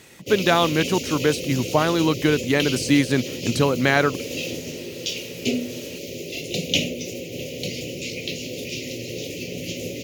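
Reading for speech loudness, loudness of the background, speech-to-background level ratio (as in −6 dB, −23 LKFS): −21.0 LKFS, −29.0 LKFS, 8.0 dB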